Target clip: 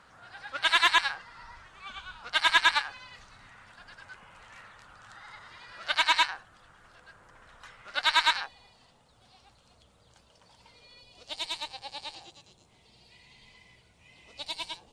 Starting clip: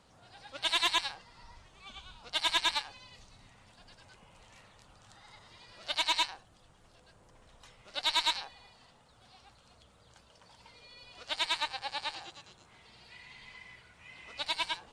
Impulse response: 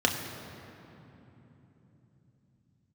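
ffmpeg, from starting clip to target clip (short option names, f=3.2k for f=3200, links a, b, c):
-af "asetnsamples=n=441:p=0,asendcmd='8.46 equalizer g -2.5;11.01 equalizer g -12',equalizer=f=1.5k:t=o:w=1.2:g=14.5"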